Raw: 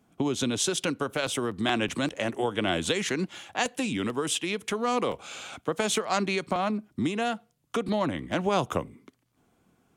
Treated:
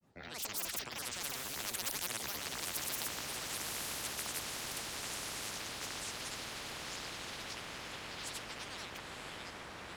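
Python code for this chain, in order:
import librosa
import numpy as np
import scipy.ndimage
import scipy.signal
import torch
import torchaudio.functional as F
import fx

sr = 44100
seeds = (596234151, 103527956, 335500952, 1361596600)

y = fx.doppler_pass(x, sr, speed_mps=18, closest_m=2.6, pass_at_s=2.13)
y = fx.echo_pitch(y, sr, ms=282, semitones=-5, count=3, db_per_echo=-6.0)
y = fx.granulator(y, sr, seeds[0], grain_ms=100.0, per_s=28.0, spray_ms=100.0, spread_st=12)
y = fx.echo_diffused(y, sr, ms=952, feedback_pct=56, wet_db=-9.5)
y = fx.spectral_comp(y, sr, ratio=10.0)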